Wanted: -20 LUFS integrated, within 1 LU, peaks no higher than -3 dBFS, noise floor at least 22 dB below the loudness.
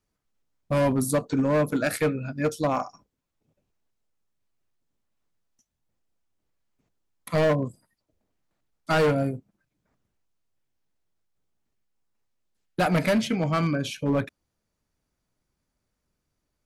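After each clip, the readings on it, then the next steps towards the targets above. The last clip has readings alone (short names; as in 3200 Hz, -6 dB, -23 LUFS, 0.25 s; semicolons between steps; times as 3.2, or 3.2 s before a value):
clipped 1.3%; flat tops at -17.5 dBFS; loudness -25.0 LUFS; peak -17.5 dBFS; loudness target -20.0 LUFS
-> clip repair -17.5 dBFS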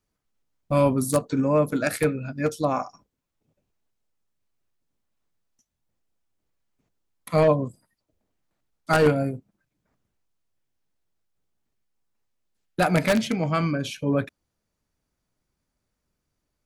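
clipped 0.0%; loudness -23.5 LUFS; peak -8.5 dBFS; loudness target -20.0 LUFS
-> gain +3.5 dB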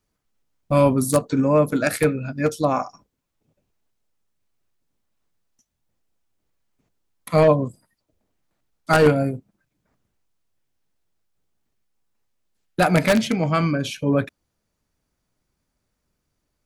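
loudness -20.0 LUFS; peak -5.0 dBFS; noise floor -77 dBFS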